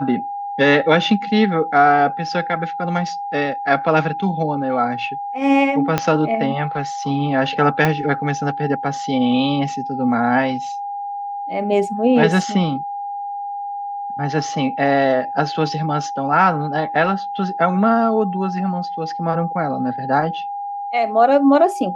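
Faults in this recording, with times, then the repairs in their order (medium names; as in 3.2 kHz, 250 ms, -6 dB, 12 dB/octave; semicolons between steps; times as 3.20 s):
whine 810 Hz -24 dBFS
5.98 s: pop -3 dBFS
7.85 s: pop -4 dBFS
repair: de-click; band-stop 810 Hz, Q 30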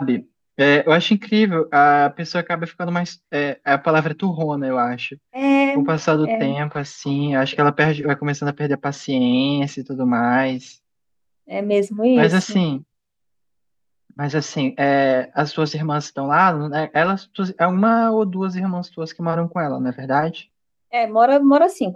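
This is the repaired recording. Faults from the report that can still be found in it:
5.98 s: pop
7.85 s: pop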